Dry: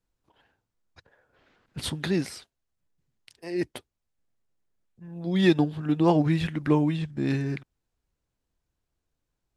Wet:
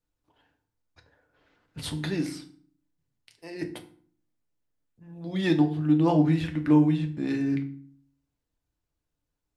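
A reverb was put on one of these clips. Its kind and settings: FDN reverb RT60 0.49 s, low-frequency decay 1.5×, high-frequency decay 0.75×, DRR 4.5 dB; trim -4 dB

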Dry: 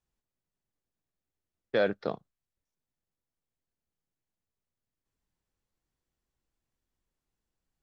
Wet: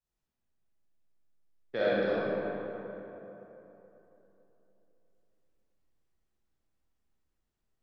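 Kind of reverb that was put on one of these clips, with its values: algorithmic reverb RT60 3.5 s, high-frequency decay 0.5×, pre-delay 5 ms, DRR -9.5 dB; trim -8.5 dB

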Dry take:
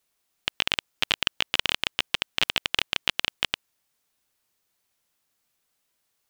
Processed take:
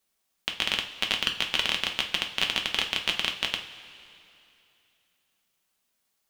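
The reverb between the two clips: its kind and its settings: two-slope reverb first 0.31 s, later 2.8 s, from -17 dB, DRR 2.5 dB; trim -3 dB

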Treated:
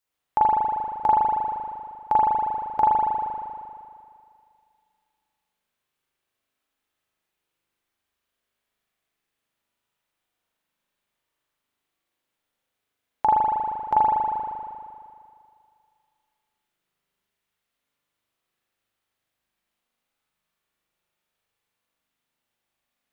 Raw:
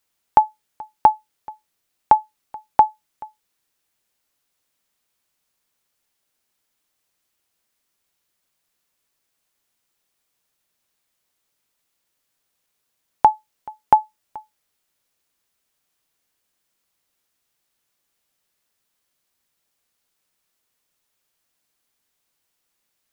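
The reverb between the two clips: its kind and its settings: spring tank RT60 2.3 s, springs 39 ms, chirp 35 ms, DRR -8 dB; trim -10.5 dB

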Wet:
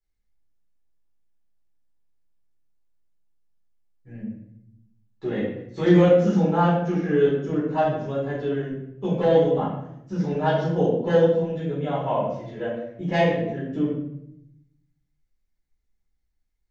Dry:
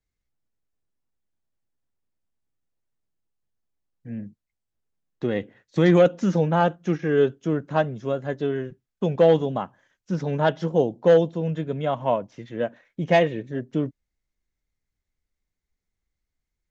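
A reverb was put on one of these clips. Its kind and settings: simulated room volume 200 m³, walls mixed, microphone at 4.2 m; trim -13 dB

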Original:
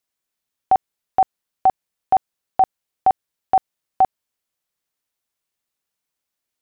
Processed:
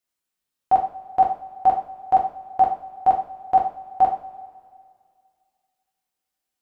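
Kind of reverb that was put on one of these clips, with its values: two-slope reverb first 0.43 s, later 2.2 s, from -18 dB, DRR -2.5 dB; trim -5.5 dB

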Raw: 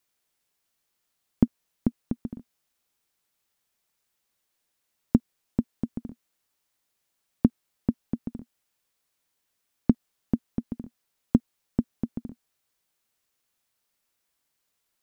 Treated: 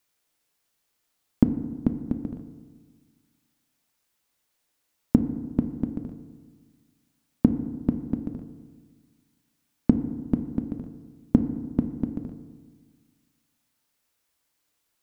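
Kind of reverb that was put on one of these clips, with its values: FDN reverb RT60 1.5 s, low-frequency decay 1.2×, high-frequency decay 0.4×, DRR 8 dB; trim +2 dB

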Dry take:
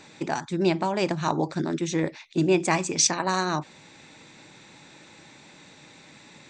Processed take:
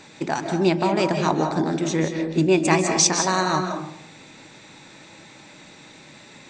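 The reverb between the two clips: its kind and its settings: algorithmic reverb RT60 0.76 s, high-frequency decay 0.35×, pre-delay 120 ms, DRR 4.5 dB; trim +3 dB

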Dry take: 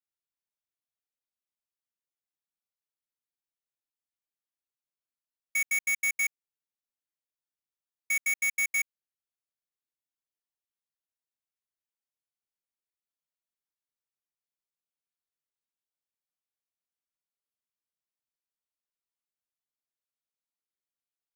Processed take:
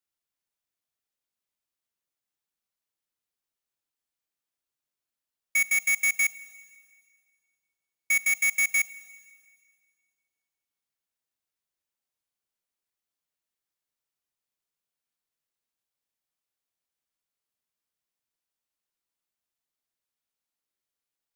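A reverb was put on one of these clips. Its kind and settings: Schroeder reverb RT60 2 s, combs from 33 ms, DRR 16.5 dB; trim +4.5 dB

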